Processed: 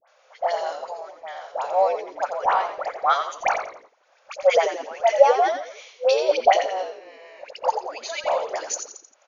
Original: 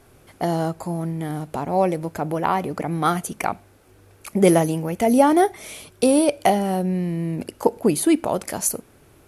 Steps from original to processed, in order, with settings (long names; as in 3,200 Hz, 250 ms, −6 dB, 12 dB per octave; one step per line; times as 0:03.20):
delay that plays each chunk backwards 117 ms, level −13.5 dB
brick-wall band-pass 500–7,000 Hz
transient designer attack +5 dB, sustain −8 dB
all-pass dispersion highs, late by 79 ms, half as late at 1,300 Hz
on a send: echo with shifted repeats 86 ms, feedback 36%, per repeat −70 Hz, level −7 dB
on the sum: level −1 dB